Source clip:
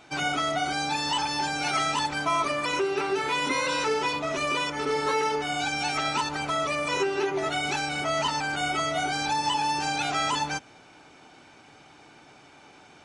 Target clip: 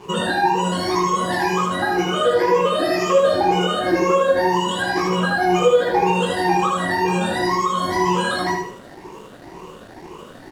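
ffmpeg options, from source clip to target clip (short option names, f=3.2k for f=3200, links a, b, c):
-af "afftfilt=real='re*pow(10,20/40*sin(2*PI*(0.76*log(max(b,1)*sr/1024/100)/log(2)-(1.6)*(pts-256)/sr)))':imag='im*pow(10,20/40*sin(2*PI*(0.76*log(max(b,1)*sr/1024/100)/log(2)-(1.6)*(pts-256)/sr)))':win_size=1024:overlap=0.75,highpass=f=120:p=1,acompressor=threshold=-23dB:ratio=12,flanger=delay=20:depth=3.2:speed=2.5,acrusher=bits=7:mix=0:aa=0.5,asetrate=54684,aresample=44100,tiltshelf=f=1.1k:g=10,aecho=1:1:78|156|234|312:0.668|0.227|0.0773|0.0263,volume=8.5dB"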